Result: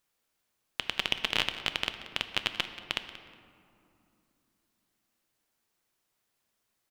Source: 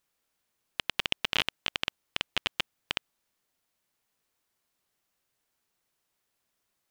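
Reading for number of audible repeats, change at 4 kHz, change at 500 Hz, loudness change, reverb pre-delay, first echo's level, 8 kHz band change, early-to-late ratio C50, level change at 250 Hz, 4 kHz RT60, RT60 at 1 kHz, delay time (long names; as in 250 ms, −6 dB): 2, +0.5 dB, +0.5 dB, +0.5 dB, 6 ms, −16.0 dB, +0.5 dB, 9.5 dB, +1.0 dB, 1.2 s, 2.6 s, 182 ms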